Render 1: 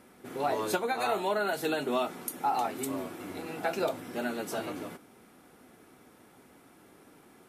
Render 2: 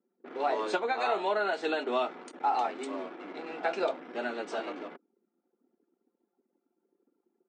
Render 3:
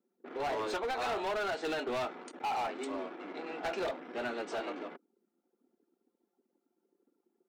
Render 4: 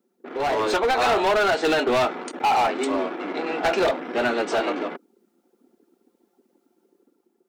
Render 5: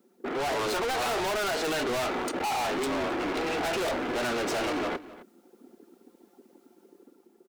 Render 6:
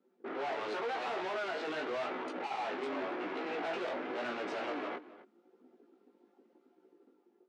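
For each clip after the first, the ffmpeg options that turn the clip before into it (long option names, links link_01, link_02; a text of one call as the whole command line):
ffmpeg -i in.wav -filter_complex "[0:a]afftfilt=real='re*between(b*sr/4096,160,8900)':imag='im*between(b*sr/4096,160,8900)':win_size=4096:overlap=0.75,anlmdn=0.0398,acrossover=split=270 5000:gain=0.0891 1 0.158[link_01][link_02][link_03];[link_01][link_02][link_03]amix=inputs=3:normalize=0,volume=1dB" out.wav
ffmpeg -i in.wav -af "asoftclip=type=hard:threshold=-30dB,volume=-1dB" out.wav
ffmpeg -i in.wav -af "dynaudnorm=framelen=170:gausssize=7:maxgain=5dB,volume=9dB" out.wav
ffmpeg -i in.wav -filter_complex "[0:a]asplit=2[link_01][link_02];[link_02]alimiter=level_in=3.5dB:limit=-24dB:level=0:latency=1:release=155,volume=-3.5dB,volume=-3dB[link_03];[link_01][link_03]amix=inputs=2:normalize=0,asoftclip=type=hard:threshold=-30.5dB,asplit=2[link_04][link_05];[link_05]adelay=262.4,volume=-17dB,highshelf=frequency=4000:gain=-5.9[link_06];[link_04][link_06]amix=inputs=2:normalize=0,volume=2.5dB" out.wav
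ffmpeg -i in.wav -af "flanger=delay=15.5:depth=4.4:speed=0.89,highpass=250,lowpass=3000,volume=-4.5dB" out.wav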